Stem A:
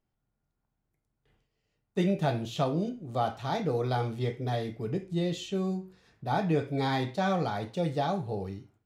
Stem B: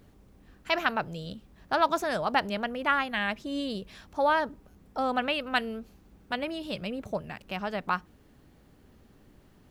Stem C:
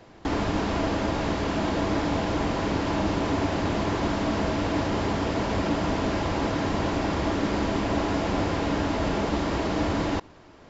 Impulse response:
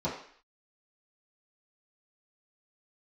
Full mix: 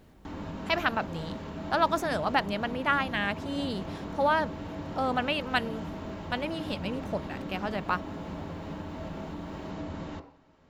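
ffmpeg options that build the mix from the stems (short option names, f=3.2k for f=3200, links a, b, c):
-filter_complex "[0:a]adelay=400,volume=-19dB[a];[1:a]volume=-0.5dB[b];[2:a]bandreject=f=3.3k:w=28,volume=-13dB,asplit=2[c][d];[d]volume=-13.5dB[e];[a][c]amix=inputs=2:normalize=0,alimiter=level_in=7.5dB:limit=-24dB:level=0:latency=1:release=413,volume=-7.5dB,volume=0dB[f];[3:a]atrim=start_sample=2205[g];[e][g]afir=irnorm=-1:irlink=0[h];[b][f][h]amix=inputs=3:normalize=0"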